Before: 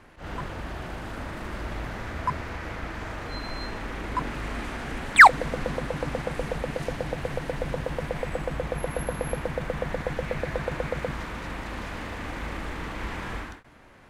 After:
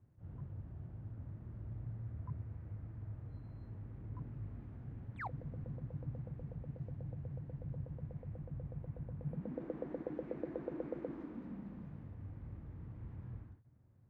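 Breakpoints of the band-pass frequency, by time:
band-pass, Q 4.2
9.19 s 110 Hz
9.62 s 320 Hz
11.16 s 320 Hz
12.18 s 110 Hz

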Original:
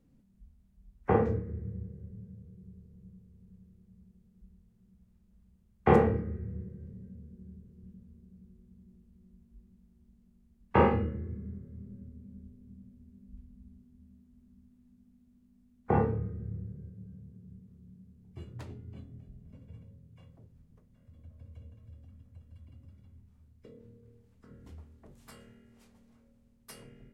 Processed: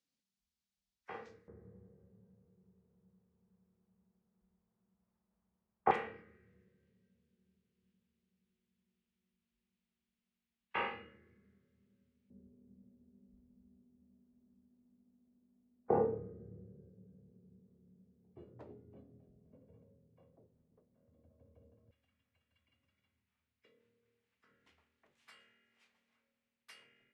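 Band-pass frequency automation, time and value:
band-pass, Q 1.5
4700 Hz
from 1.48 s 900 Hz
from 5.91 s 2800 Hz
from 12.3 s 500 Hz
from 21.91 s 2400 Hz

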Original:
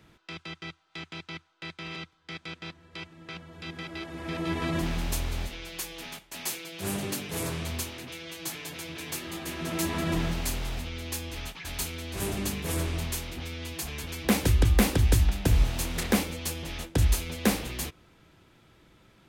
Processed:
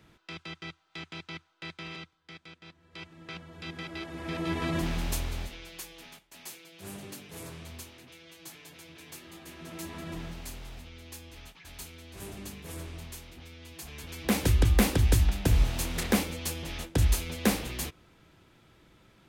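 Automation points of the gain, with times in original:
1.79 s -1.5 dB
2.61 s -11.5 dB
3.14 s -1 dB
5.11 s -1 dB
6.35 s -11 dB
13.63 s -11 dB
14.46 s -1 dB

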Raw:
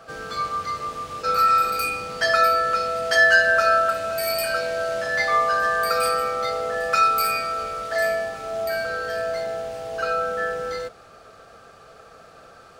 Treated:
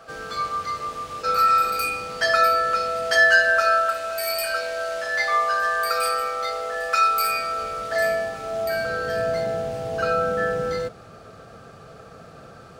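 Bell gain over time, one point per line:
bell 140 Hz 2.5 oct
3.14 s -2 dB
3.9 s -13.5 dB
7.01 s -13.5 dB
7.51 s -2.5 dB
7.89 s +3.5 dB
8.62 s +3.5 dB
9.25 s +12.5 dB

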